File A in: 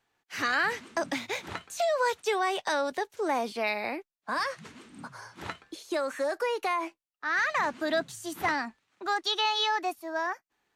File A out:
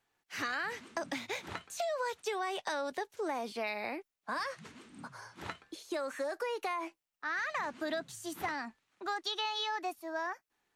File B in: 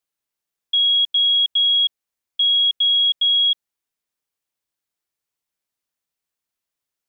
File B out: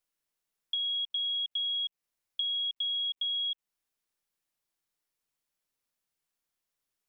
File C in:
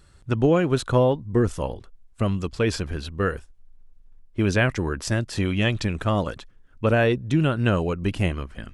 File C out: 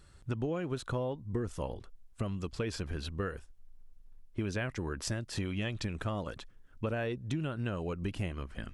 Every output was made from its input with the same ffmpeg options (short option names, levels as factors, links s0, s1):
-af "acompressor=threshold=0.0398:ratio=5,volume=0.631" -ar 44100 -c:a sbc -b:a 192k